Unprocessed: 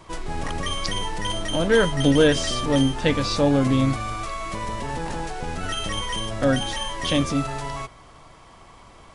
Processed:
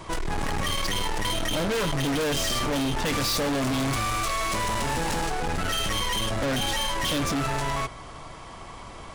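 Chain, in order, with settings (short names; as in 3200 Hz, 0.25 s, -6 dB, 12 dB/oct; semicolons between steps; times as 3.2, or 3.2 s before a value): 3.05–5.27 high shelf 2700 Hz +7.5 dB; overloaded stage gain 31 dB; gain +6.5 dB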